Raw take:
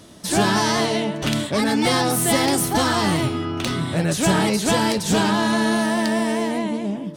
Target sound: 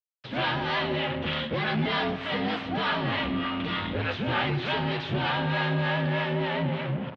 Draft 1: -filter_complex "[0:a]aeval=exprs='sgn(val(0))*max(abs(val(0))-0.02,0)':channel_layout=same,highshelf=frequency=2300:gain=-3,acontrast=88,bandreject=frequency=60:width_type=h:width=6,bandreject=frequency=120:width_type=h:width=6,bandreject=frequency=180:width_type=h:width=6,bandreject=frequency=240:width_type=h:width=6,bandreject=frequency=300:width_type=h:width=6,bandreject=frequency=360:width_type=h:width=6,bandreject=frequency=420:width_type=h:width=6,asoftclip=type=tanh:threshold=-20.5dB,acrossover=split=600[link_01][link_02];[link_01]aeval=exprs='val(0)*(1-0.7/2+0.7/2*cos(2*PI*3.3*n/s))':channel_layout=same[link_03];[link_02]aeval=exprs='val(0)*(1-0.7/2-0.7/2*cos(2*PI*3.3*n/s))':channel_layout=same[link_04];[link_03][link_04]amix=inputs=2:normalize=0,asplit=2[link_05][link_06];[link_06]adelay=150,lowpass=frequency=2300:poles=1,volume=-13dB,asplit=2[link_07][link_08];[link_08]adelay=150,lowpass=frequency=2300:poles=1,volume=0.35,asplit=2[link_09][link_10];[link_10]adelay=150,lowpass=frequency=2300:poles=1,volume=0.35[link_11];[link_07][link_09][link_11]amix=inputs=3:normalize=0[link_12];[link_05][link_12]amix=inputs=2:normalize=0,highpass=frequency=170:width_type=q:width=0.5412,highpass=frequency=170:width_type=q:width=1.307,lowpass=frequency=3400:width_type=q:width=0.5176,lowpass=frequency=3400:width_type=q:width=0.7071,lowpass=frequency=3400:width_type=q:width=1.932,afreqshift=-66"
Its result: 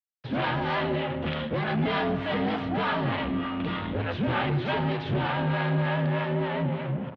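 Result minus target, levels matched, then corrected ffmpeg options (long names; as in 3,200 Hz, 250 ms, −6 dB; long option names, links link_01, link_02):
4,000 Hz band −5.5 dB
-filter_complex "[0:a]aeval=exprs='sgn(val(0))*max(abs(val(0))-0.02,0)':channel_layout=same,highshelf=frequency=2300:gain=9,acontrast=88,bandreject=frequency=60:width_type=h:width=6,bandreject=frequency=120:width_type=h:width=6,bandreject=frequency=180:width_type=h:width=6,bandreject=frequency=240:width_type=h:width=6,bandreject=frequency=300:width_type=h:width=6,bandreject=frequency=360:width_type=h:width=6,bandreject=frequency=420:width_type=h:width=6,asoftclip=type=tanh:threshold=-20.5dB,acrossover=split=600[link_01][link_02];[link_01]aeval=exprs='val(0)*(1-0.7/2+0.7/2*cos(2*PI*3.3*n/s))':channel_layout=same[link_03];[link_02]aeval=exprs='val(0)*(1-0.7/2-0.7/2*cos(2*PI*3.3*n/s))':channel_layout=same[link_04];[link_03][link_04]amix=inputs=2:normalize=0,asplit=2[link_05][link_06];[link_06]adelay=150,lowpass=frequency=2300:poles=1,volume=-13dB,asplit=2[link_07][link_08];[link_08]adelay=150,lowpass=frequency=2300:poles=1,volume=0.35,asplit=2[link_09][link_10];[link_10]adelay=150,lowpass=frequency=2300:poles=1,volume=0.35[link_11];[link_07][link_09][link_11]amix=inputs=3:normalize=0[link_12];[link_05][link_12]amix=inputs=2:normalize=0,highpass=frequency=170:width_type=q:width=0.5412,highpass=frequency=170:width_type=q:width=1.307,lowpass=frequency=3400:width_type=q:width=0.5176,lowpass=frequency=3400:width_type=q:width=0.7071,lowpass=frequency=3400:width_type=q:width=1.932,afreqshift=-66"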